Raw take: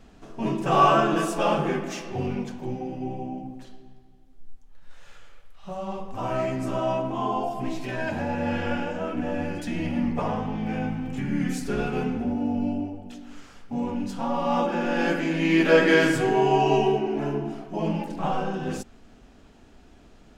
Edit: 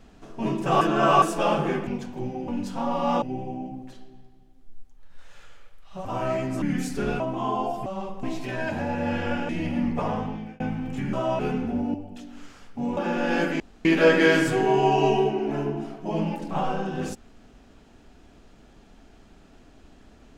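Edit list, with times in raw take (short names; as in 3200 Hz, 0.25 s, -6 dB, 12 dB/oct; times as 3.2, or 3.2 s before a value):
0.81–1.22 reverse
1.87–2.33 cut
5.77–6.14 move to 7.63
6.71–6.97 swap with 11.33–11.91
8.89–9.69 cut
10.43–10.8 fade out
12.46–12.88 cut
13.91–14.65 move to 2.94
15.28–15.53 room tone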